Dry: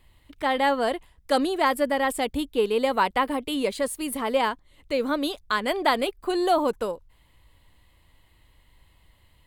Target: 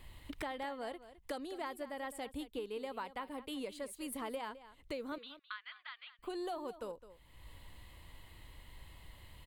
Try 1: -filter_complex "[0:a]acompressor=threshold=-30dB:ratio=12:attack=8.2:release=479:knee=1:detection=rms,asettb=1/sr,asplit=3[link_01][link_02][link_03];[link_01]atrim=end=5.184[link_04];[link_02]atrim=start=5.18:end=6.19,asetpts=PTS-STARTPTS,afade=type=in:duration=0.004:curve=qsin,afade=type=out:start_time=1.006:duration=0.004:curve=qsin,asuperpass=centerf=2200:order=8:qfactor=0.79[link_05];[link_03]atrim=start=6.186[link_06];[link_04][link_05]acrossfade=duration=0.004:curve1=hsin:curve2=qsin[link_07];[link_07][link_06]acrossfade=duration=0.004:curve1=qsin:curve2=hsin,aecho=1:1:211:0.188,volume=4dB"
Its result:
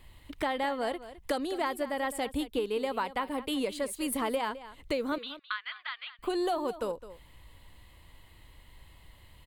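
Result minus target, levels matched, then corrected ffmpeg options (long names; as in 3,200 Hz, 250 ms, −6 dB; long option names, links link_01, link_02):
downward compressor: peak gain reduction −10.5 dB
-filter_complex "[0:a]acompressor=threshold=-41.5dB:ratio=12:attack=8.2:release=479:knee=1:detection=rms,asettb=1/sr,asplit=3[link_01][link_02][link_03];[link_01]atrim=end=5.184[link_04];[link_02]atrim=start=5.18:end=6.19,asetpts=PTS-STARTPTS,afade=type=in:duration=0.004:curve=qsin,afade=type=out:start_time=1.006:duration=0.004:curve=qsin,asuperpass=centerf=2200:order=8:qfactor=0.79[link_05];[link_03]atrim=start=6.186[link_06];[link_04][link_05]acrossfade=duration=0.004:curve1=hsin:curve2=qsin[link_07];[link_07][link_06]acrossfade=duration=0.004:curve1=qsin:curve2=hsin,aecho=1:1:211:0.188,volume=4dB"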